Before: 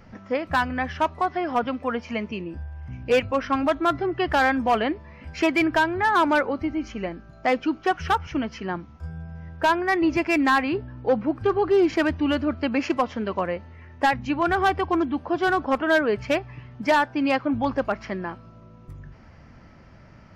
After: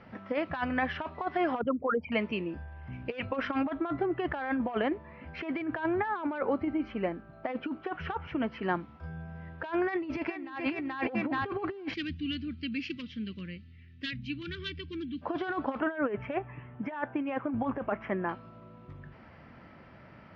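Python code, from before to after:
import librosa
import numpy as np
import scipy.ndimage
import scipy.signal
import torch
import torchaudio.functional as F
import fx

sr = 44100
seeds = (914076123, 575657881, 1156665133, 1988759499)

y = fx.envelope_sharpen(x, sr, power=3.0, at=(1.61, 2.12))
y = fx.lowpass(y, sr, hz=1700.0, slope=6, at=(3.63, 8.63))
y = fx.echo_throw(y, sr, start_s=9.86, length_s=0.8, ms=430, feedback_pct=25, wet_db=-1.0)
y = fx.cheby1_bandstop(y, sr, low_hz=170.0, high_hz=3600.0, order=2, at=(11.93, 15.21), fade=0.02)
y = fx.moving_average(y, sr, points=10, at=(15.8, 18.29))
y = scipy.signal.sosfilt(scipy.signal.butter(4, 3800.0, 'lowpass', fs=sr, output='sos'), y)
y = fx.over_compress(y, sr, threshold_db=-25.0, ratio=-0.5)
y = fx.highpass(y, sr, hz=200.0, slope=6)
y = y * 10.0 ** (-3.5 / 20.0)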